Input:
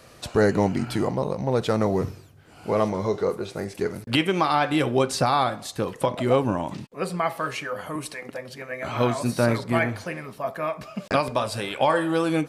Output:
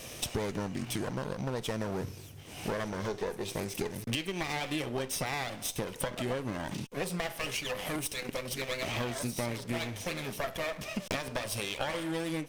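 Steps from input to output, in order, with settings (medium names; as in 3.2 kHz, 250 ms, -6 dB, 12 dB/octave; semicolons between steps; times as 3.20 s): comb filter that takes the minimum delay 0.33 ms; treble shelf 2.5 kHz +8.5 dB; compression 8:1, threshold -35 dBFS, peak gain reduction 20 dB; trim +3.5 dB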